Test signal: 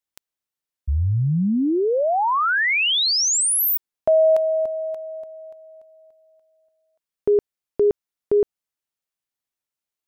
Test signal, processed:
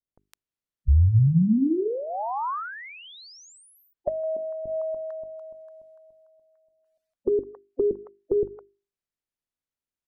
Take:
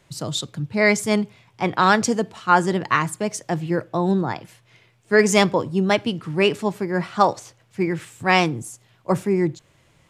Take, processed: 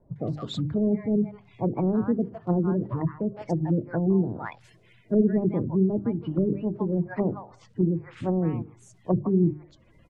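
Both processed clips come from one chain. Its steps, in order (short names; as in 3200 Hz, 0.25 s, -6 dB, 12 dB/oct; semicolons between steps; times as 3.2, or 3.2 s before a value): bin magnitudes rounded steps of 30 dB; tilt -2 dB/oct; notches 50/100/150/200/250/300/350/400 Hz; bands offset in time lows, highs 0.16 s, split 840 Hz; treble ducked by the level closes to 360 Hz, closed at -18 dBFS; gain -2.5 dB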